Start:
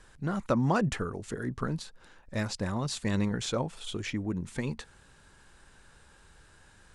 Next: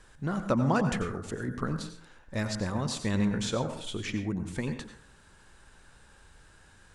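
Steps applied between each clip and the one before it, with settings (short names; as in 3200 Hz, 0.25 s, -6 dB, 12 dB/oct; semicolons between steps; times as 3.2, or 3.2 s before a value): plate-style reverb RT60 0.5 s, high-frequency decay 0.5×, pre-delay 80 ms, DRR 8 dB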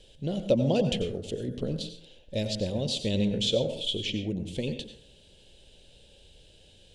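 EQ curve 310 Hz 0 dB, 560 Hz +8 dB, 1200 Hz -25 dB, 1900 Hz -12 dB, 3100 Hz +13 dB, 5600 Hz 0 dB, 8500 Hz -3 dB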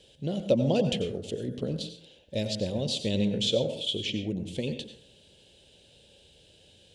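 HPF 82 Hz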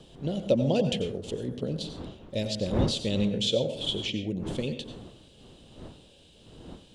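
wind noise 330 Hz -40 dBFS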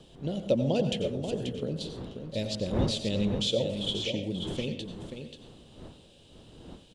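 echo 0.535 s -8 dB; gain -2 dB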